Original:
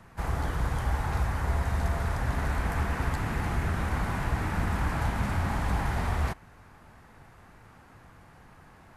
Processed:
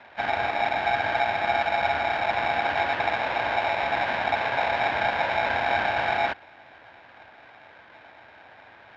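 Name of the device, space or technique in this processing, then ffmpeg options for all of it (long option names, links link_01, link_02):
ring modulator pedal into a guitar cabinet: -af "aeval=exprs='val(0)*sgn(sin(2*PI*760*n/s))':channel_layout=same,highpass=83,equalizer=frequency=170:width_type=q:width=4:gain=-7,equalizer=frequency=410:width_type=q:width=4:gain=-3,equalizer=frequency=1600:width_type=q:width=4:gain=8,lowpass=frequency=3700:width=0.5412,lowpass=frequency=3700:width=1.3066,volume=2.5dB"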